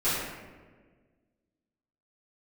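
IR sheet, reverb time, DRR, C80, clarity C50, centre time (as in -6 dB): 1.5 s, -15.0 dB, 1.0 dB, -1.5 dB, 93 ms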